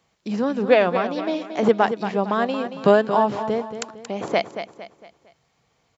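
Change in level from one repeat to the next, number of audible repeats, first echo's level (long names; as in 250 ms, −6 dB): −8.0 dB, 4, −10.0 dB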